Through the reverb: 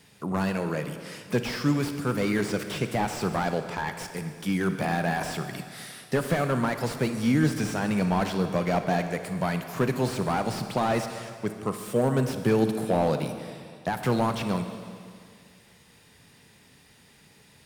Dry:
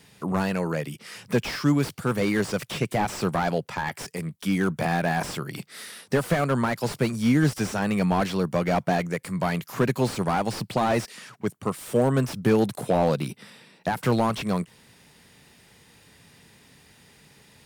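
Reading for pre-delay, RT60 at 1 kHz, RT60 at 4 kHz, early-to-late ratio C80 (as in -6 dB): 37 ms, 2.1 s, 2.1 s, 9.5 dB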